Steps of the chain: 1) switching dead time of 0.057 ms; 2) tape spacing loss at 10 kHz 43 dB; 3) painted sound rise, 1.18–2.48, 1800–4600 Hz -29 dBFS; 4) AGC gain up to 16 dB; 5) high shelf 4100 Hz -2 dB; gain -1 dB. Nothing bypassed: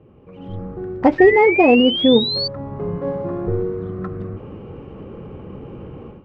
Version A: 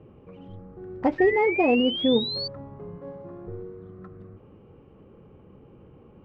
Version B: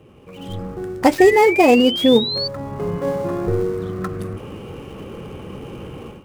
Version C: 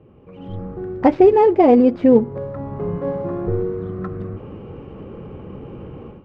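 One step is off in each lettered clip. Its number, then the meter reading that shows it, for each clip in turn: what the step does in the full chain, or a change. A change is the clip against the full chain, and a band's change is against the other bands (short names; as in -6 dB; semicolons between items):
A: 4, 125 Hz band -4.5 dB; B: 2, 1 kHz band +2.0 dB; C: 3, 2 kHz band -16.0 dB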